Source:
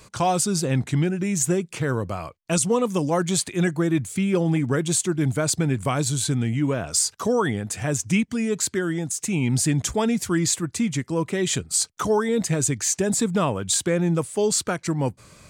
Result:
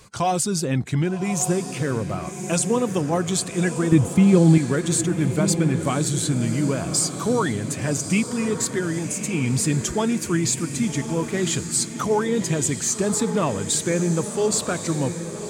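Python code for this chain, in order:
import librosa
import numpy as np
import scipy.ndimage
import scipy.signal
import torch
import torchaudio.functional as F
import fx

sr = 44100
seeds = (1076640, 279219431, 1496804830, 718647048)

y = fx.spec_quant(x, sr, step_db=15)
y = fx.low_shelf(y, sr, hz=340.0, db=11.5, at=(3.92, 4.58))
y = fx.echo_diffused(y, sr, ms=1148, feedback_pct=48, wet_db=-9)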